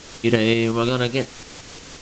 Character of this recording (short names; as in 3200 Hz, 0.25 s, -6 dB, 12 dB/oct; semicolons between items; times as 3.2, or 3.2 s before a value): a quantiser's noise floor 6-bit, dither triangular; tremolo saw up 5.6 Hz, depth 45%; µ-law